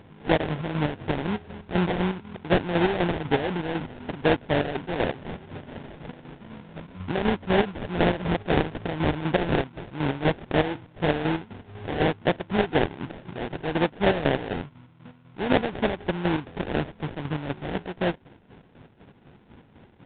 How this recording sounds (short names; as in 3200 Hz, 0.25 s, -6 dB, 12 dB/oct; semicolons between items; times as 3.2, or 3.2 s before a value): a buzz of ramps at a fixed pitch in blocks of 8 samples; chopped level 4 Hz, depth 60%, duty 45%; aliases and images of a low sample rate 1200 Hz, jitter 20%; µ-law